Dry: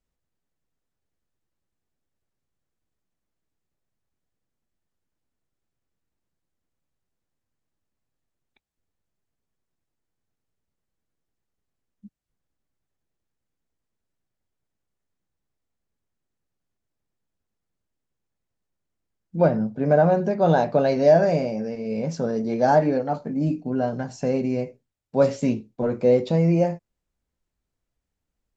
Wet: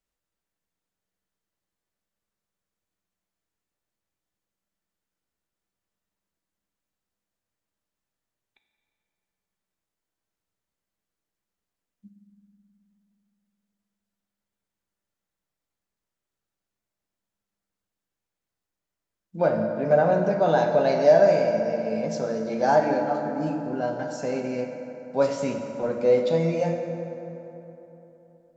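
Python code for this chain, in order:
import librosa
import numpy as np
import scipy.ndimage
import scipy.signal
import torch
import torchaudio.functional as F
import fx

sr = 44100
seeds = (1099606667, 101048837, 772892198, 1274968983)

y = fx.low_shelf(x, sr, hz=390.0, db=-10.0)
y = fx.rev_fdn(y, sr, rt60_s=3.5, lf_ratio=1.0, hf_ratio=0.5, size_ms=30.0, drr_db=3.0)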